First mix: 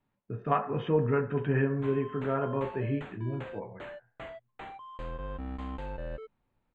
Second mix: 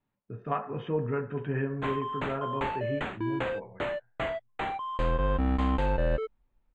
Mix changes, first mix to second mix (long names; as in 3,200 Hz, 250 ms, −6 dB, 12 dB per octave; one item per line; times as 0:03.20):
speech −3.5 dB
background +11.5 dB